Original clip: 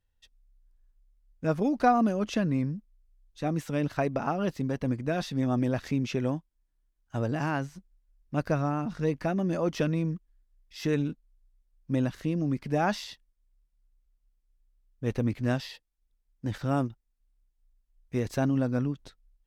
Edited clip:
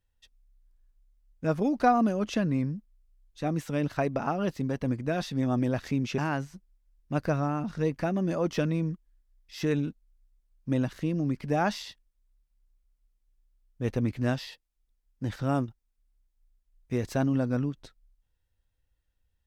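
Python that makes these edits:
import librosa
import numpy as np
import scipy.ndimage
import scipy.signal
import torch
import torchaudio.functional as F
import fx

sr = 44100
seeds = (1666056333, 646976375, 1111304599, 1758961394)

y = fx.edit(x, sr, fx.cut(start_s=6.18, length_s=1.22), tone=tone)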